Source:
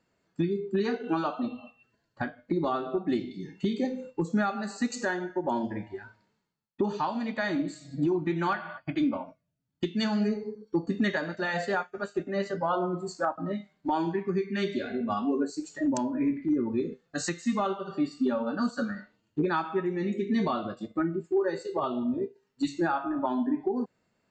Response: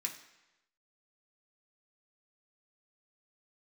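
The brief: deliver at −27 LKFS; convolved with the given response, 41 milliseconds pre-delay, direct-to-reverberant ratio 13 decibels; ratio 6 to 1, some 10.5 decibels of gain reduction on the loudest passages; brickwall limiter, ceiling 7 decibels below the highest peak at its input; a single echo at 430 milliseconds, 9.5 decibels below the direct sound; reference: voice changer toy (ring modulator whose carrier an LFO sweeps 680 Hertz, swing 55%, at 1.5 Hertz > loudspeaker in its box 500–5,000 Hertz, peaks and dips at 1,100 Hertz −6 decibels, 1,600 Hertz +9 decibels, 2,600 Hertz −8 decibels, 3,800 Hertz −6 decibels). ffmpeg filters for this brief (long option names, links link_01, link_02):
-filter_complex "[0:a]acompressor=threshold=-34dB:ratio=6,alimiter=level_in=6.5dB:limit=-24dB:level=0:latency=1,volume=-6.5dB,aecho=1:1:430:0.335,asplit=2[link_01][link_02];[1:a]atrim=start_sample=2205,adelay=41[link_03];[link_02][link_03]afir=irnorm=-1:irlink=0,volume=-13dB[link_04];[link_01][link_04]amix=inputs=2:normalize=0,aeval=exprs='val(0)*sin(2*PI*680*n/s+680*0.55/1.5*sin(2*PI*1.5*n/s))':channel_layout=same,highpass=500,equalizer=frequency=1100:width_type=q:width=4:gain=-6,equalizer=frequency=1600:width_type=q:width=4:gain=9,equalizer=frequency=2600:width_type=q:width=4:gain=-8,equalizer=frequency=3800:width_type=q:width=4:gain=-6,lowpass=frequency=5000:width=0.5412,lowpass=frequency=5000:width=1.3066,volume=16.5dB"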